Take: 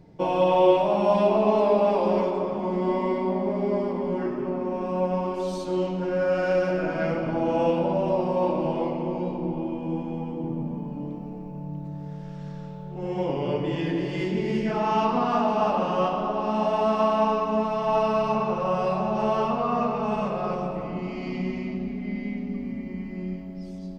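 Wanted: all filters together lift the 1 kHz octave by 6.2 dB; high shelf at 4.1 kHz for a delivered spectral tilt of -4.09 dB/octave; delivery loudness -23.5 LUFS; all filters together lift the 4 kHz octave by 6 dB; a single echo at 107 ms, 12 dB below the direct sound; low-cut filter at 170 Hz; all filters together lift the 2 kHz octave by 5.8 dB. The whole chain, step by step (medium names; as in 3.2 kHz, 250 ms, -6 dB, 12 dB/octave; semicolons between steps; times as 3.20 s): high-pass 170 Hz; peaking EQ 1 kHz +6.5 dB; peaking EQ 2 kHz +4 dB; peaking EQ 4 kHz +8 dB; treble shelf 4.1 kHz -3 dB; delay 107 ms -12 dB; trim -1.5 dB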